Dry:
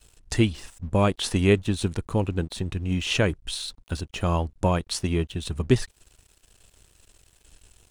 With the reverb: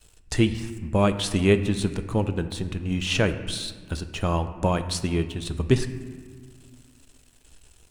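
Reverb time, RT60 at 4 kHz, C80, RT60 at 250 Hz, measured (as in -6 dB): 1.7 s, 1.1 s, 13.0 dB, 2.7 s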